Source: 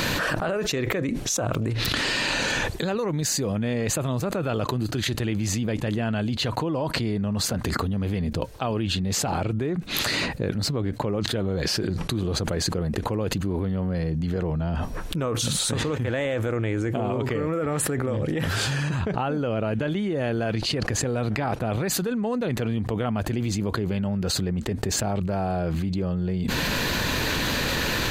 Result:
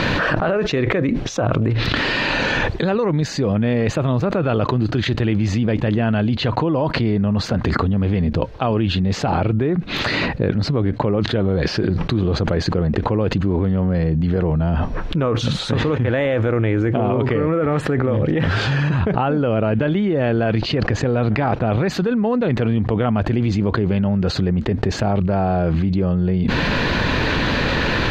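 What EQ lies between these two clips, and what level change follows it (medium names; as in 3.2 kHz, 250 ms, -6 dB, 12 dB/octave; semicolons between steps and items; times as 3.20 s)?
distance through air 230 m; +8.0 dB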